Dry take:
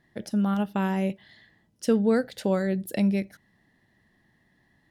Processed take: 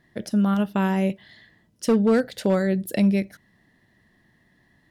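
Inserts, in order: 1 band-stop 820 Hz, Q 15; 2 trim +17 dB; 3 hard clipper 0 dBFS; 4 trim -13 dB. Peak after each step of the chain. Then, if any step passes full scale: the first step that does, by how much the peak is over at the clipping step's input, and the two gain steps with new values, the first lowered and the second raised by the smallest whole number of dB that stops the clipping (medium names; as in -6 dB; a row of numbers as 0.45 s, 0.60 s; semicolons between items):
-12.5 dBFS, +4.5 dBFS, 0.0 dBFS, -13.0 dBFS; step 2, 4.5 dB; step 2 +12 dB, step 4 -8 dB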